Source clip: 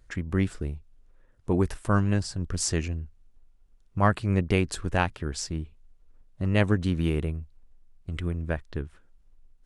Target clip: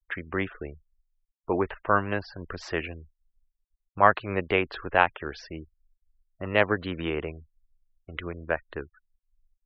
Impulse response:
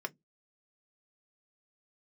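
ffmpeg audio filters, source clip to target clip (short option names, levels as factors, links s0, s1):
-filter_complex "[0:a]acrossover=split=410 3600:gain=0.126 1 0.112[s0][s1][s2];[s0][s1][s2]amix=inputs=3:normalize=0,acrossover=split=4700[s3][s4];[s4]acompressor=threshold=0.001:ratio=4:attack=1:release=60[s5];[s3][s5]amix=inputs=2:normalize=0,afftfilt=real='re*gte(hypot(re,im),0.00355)':imag='im*gte(hypot(re,im),0.00355)':win_size=1024:overlap=0.75,volume=2.11"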